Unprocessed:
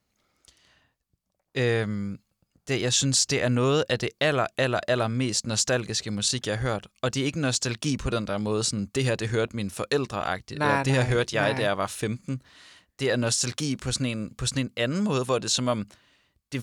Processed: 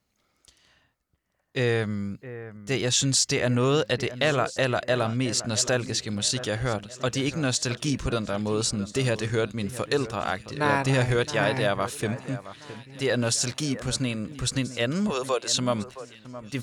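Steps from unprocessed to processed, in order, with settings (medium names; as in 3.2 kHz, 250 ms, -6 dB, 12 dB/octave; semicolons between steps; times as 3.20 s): 15.10–15.54 s: high-pass 390 Hz 24 dB/octave; on a send: echo whose repeats swap between lows and highs 667 ms, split 2.1 kHz, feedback 57%, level -14 dB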